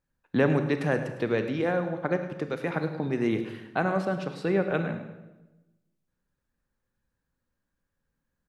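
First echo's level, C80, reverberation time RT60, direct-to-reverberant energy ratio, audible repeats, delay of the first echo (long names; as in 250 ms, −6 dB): −14.0 dB, 9.5 dB, 1.1 s, 7.5 dB, 2, 106 ms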